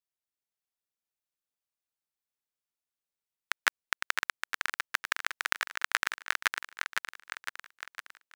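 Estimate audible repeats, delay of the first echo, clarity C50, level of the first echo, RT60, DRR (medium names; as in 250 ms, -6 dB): 6, 508 ms, no reverb, -5.5 dB, no reverb, no reverb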